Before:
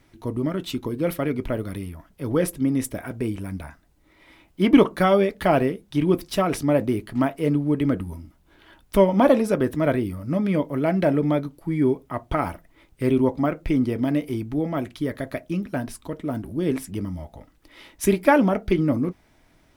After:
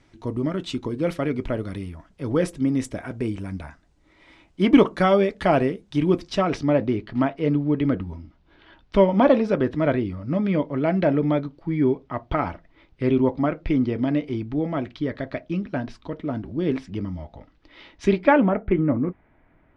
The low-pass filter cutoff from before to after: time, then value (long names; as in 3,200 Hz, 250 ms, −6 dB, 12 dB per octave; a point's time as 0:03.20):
low-pass filter 24 dB per octave
0:05.99 7,900 Hz
0:06.80 4,800 Hz
0:18.14 4,800 Hz
0:18.58 2,200 Hz